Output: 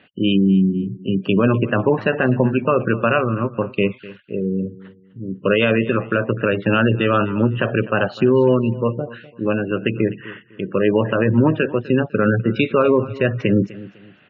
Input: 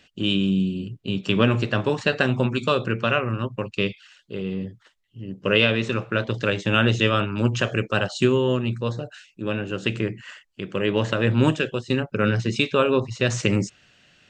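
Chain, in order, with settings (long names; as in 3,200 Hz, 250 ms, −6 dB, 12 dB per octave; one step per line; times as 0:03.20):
low-pass filter 2,100 Hz 12 dB per octave
gate on every frequency bin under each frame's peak −25 dB strong
high-pass filter 130 Hz
brickwall limiter −13 dBFS, peak gain reduction 7 dB
repeating echo 251 ms, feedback 28%, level −18.5 dB
level +7.5 dB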